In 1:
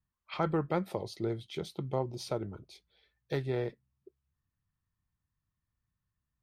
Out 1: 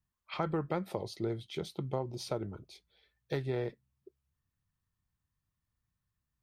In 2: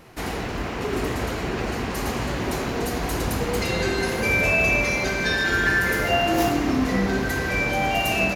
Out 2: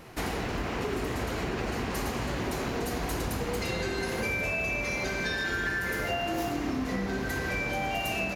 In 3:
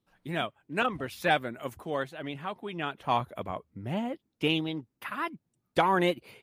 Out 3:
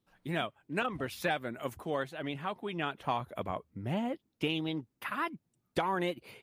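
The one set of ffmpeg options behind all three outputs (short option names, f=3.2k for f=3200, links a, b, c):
-af "acompressor=threshold=-28dB:ratio=6"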